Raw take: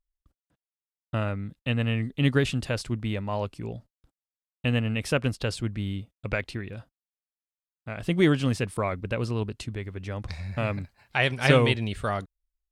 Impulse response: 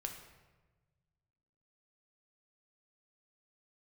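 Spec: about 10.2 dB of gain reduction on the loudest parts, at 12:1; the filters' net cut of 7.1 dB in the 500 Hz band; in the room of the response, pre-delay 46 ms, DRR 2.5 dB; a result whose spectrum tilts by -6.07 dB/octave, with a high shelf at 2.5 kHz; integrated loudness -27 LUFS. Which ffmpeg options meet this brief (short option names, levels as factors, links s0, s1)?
-filter_complex "[0:a]equalizer=f=500:t=o:g=-8.5,highshelf=f=2500:g=-8,acompressor=threshold=0.0501:ratio=12,asplit=2[s0][s1];[1:a]atrim=start_sample=2205,adelay=46[s2];[s1][s2]afir=irnorm=-1:irlink=0,volume=0.891[s3];[s0][s3]amix=inputs=2:normalize=0,volume=1.78"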